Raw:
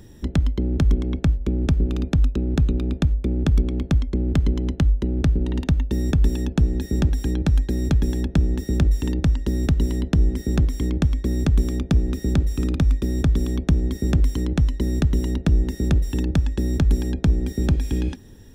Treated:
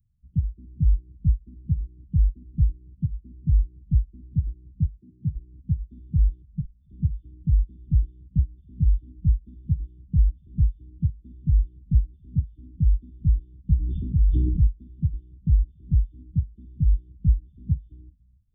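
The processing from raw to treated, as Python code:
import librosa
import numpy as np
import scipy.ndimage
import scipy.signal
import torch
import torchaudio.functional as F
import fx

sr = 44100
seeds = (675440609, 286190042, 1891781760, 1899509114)

y = fx.freq_compress(x, sr, knee_hz=2200.0, ratio=4.0)
y = fx.level_steps(y, sr, step_db=17, at=(6.42, 6.9))
y = scipy.signal.sosfilt(scipy.signal.cheby2(4, 80, [660.0, 2400.0], 'bandstop', fs=sr, output='sos'), y)
y = y + 10.0 ** (-12.5 / 20.0) * np.pad(y, (int(282 * sr / 1000.0), 0))[:len(y)]
y = fx.noise_reduce_blind(y, sr, reduce_db=23)
y = fx.highpass(y, sr, hz=100.0, slope=24, at=(4.85, 5.35), fade=0.02)
y = fx.sustainer(y, sr, db_per_s=22.0, at=(13.76, 14.67))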